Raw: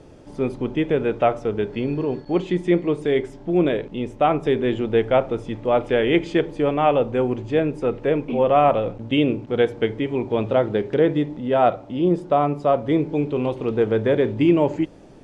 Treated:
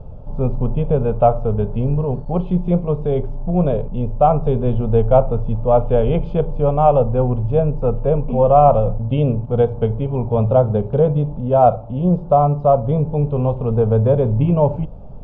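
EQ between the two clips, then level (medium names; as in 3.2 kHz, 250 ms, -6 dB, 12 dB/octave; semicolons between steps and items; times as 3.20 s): low-pass 2.5 kHz 12 dB/octave; tilt EQ -3.5 dB/octave; static phaser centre 780 Hz, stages 4; +4.0 dB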